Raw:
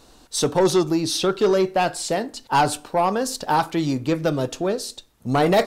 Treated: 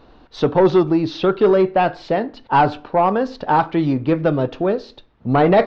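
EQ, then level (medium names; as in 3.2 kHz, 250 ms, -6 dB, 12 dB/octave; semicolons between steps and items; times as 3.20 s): Gaussian low-pass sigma 2.8 samples; +4.5 dB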